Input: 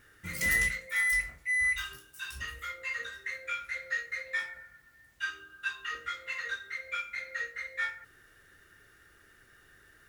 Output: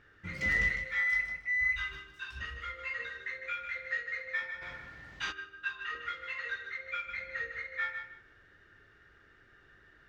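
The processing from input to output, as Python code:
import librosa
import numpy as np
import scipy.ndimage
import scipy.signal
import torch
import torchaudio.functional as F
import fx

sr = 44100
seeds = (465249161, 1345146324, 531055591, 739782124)

y = fx.highpass(x, sr, hz=140.0, slope=6, at=(0.69, 1.48))
y = fx.low_shelf(y, sr, hz=240.0, db=9.5, at=(7.07, 7.6))
y = fx.wow_flutter(y, sr, seeds[0], rate_hz=2.1, depth_cents=15.0)
y = fx.air_absorb(y, sr, metres=200.0)
y = fx.echo_feedback(y, sr, ms=153, feedback_pct=22, wet_db=-8)
y = fx.spectral_comp(y, sr, ratio=2.0, at=(4.61, 5.31), fade=0.02)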